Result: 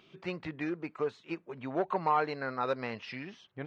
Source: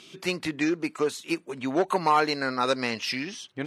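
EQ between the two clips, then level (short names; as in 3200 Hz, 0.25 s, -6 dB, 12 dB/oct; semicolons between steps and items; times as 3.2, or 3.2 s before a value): tape spacing loss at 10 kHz 38 dB; bell 280 Hz -7.5 dB 1 oct; -2.0 dB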